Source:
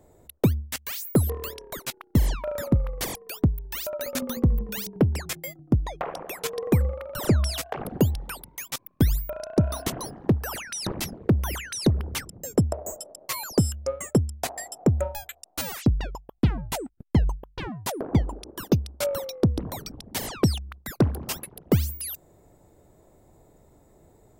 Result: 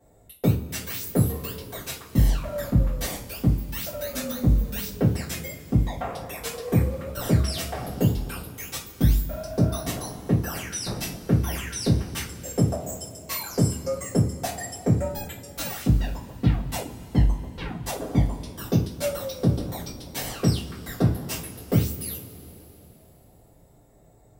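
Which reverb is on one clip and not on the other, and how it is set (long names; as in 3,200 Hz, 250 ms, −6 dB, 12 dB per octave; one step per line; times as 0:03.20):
coupled-rooms reverb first 0.31 s, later 3.5 s, from −22 dB, DRR −9.5 dB
level −10 dB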